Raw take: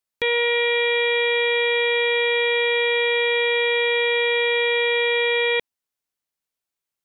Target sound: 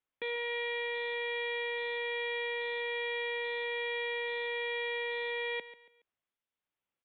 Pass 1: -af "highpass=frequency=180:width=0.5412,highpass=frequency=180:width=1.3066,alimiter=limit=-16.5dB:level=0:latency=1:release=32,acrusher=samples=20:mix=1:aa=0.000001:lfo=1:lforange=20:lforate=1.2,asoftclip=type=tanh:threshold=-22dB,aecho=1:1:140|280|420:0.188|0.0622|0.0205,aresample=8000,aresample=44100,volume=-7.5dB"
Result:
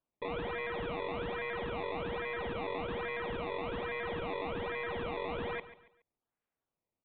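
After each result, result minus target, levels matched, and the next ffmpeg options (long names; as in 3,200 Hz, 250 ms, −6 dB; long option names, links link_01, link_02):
sample-and-hold swept by an LFO: distortion +14 dB; soft clipping: distortion +14 dB
-af "highpass=frequency=180:width=0.5412,highpass=frequency=180:width=1.3066,alimiter=limit=-16.5dB:level=0:latency=1:release=32,acrusher=samples=4:mix=1:aa=0.000001:lfo=1:lforange=4:lforate=1.2,asoftclip=type=tanh:threshold=-22dB,aecho=1:1:140|280|420:0.188|0.0622|0.0205,aresample=8000,aresample=44100,volume=-7.5dB"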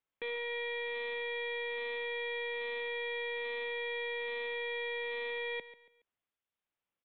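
soft clipping: distortion +14 dB
-af "highpass=frequency=180:width=0.5412,highpass=frequency=180:width=1.3066,alimiter=limit=-16.5dB:level=0:latency=1:release=32,acrusher=samples=4:mix=1:aa=0.000001:lfo=1:lforange=4:lforate=1.2,asoftclip=type=tanh:threshold=-13dB,aecho=1:1:140|280|420:0.188|0.0622|0.0205,aresample=8000,aresample=44100,volume=-7.5dB"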